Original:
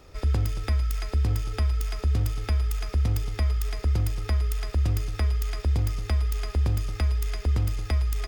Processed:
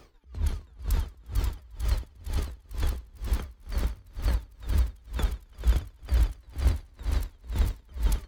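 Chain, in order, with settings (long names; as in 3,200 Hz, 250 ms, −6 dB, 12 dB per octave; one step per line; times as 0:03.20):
pitch shifter swept by a sawtooth −8.5 semitones, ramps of 264 ms
echo that builds up and dies away 89 ms, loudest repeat 5, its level −8 dB
tremolo with a sine in dB 2.1 Hz, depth 31 dB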